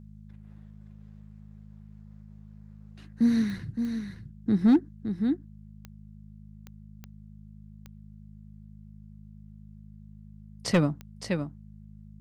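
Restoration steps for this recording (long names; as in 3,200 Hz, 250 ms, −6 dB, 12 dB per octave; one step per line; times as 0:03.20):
clipped peaks rebuilt −14.5 dBFS
click removal
hum removal 52.2 Hz, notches 4
echo removal 566 ms −7.5 dB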